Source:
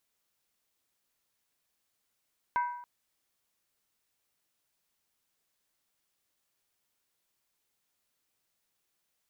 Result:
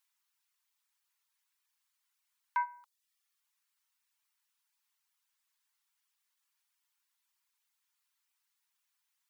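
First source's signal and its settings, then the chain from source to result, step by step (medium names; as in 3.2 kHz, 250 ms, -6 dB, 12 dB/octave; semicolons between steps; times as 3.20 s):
skin hit length 0.28 s, lowest mode 972 Hz, decay 0.76 s, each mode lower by 9 dB, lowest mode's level -24 dB
reverb removal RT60 0.65 s; elliptic high-pass 890 Hz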